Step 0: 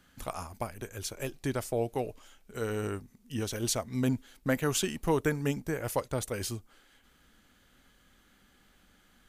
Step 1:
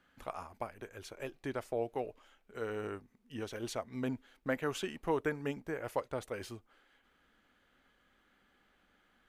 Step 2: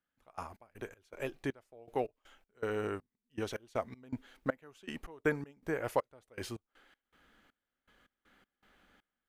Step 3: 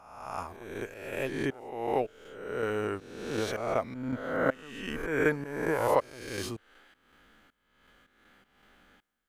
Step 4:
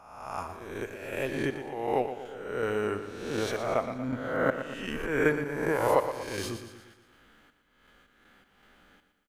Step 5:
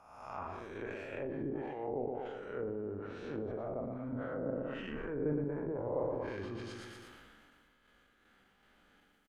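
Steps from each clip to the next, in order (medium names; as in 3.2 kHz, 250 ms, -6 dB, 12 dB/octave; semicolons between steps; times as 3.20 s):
tone controls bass -9 dB, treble -14 dB; trim -3.5 dB
trance gate "..x.x.xx" 80 bpm -24 dB; trim +4 dB
reverse spectral sustain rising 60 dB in 1.06 s; trim +3 dB
feedback delay 118 ms, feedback 51%, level -10 dB; trim +1 dB
low-pass that closes with the level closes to 460 Hz, closed at -26 dBFS; doubling 41 ms -10 dB; decay stretcher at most 24 dB/s; trim -8 dB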